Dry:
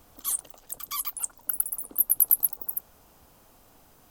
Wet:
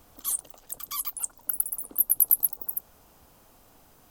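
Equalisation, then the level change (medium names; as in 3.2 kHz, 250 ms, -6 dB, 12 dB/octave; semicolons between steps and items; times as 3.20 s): dynamic bell 1.9 kHz, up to -4 dB, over -47 dBFS, Q 0.77; 0.0 dB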